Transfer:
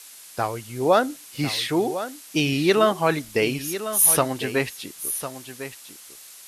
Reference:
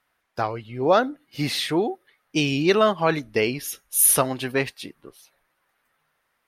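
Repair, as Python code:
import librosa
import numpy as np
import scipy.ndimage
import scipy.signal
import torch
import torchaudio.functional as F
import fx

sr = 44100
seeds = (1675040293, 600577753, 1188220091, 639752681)

y = fx.noise_reduce(x, sr, print_start_s=5.96, print_end_s=6.46, reduce_db=28.0)
y = fx.fix_echo_inverse(y, sr, delay_ms=1052, level_db=-11.5)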